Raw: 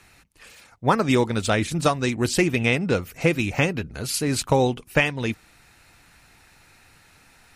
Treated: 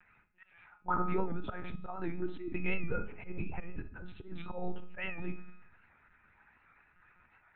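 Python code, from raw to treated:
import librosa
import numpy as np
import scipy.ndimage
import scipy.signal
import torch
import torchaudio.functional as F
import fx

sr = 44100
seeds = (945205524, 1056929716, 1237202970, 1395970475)

y = fx.spec_expand(x, sr, power=1.8)
y = scipy.signal.sosfilt(scipy.signal.butter(4, 82.0, 'highpass', fs=sr, output='sos'), y)
y = fx.room_shoebox(y, sr, seeds[0], volume_m3=470.0, walls='furnished', distance_m=1.0)
y = fx.lpc_monotone(y, sr, seeds[1], pitch_hz=180.0, order=10)
y = scipy.signal.sosfilt(scipy.signal.butter(2, 1500.0, 'lowpass', fs=sr, output='sos'), y)
y = fx.low_shelf_res(y, sr, hz=780.0, db=-9.5, q=1.5)
y = fx.notch(y, sr, hz=1100.0, q=8.0)
y = fx.auto_swell(y, sr, attack_ms=176.0)
y = fx.comb_fb(y, sr, f0_hz=210.0, decay_s=0.69, harmonics='all', damping=0.0, mix_pct=60)
y = fx.record_warp(y, sr, rpm=78.0, depth_cents=100.0)
y = F.gain(torch.from_numpy(y), 4.0).numpy()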